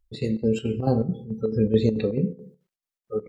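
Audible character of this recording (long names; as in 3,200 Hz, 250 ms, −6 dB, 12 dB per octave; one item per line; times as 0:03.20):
chopped level 4.6 Hz, depth 60%, duty 70%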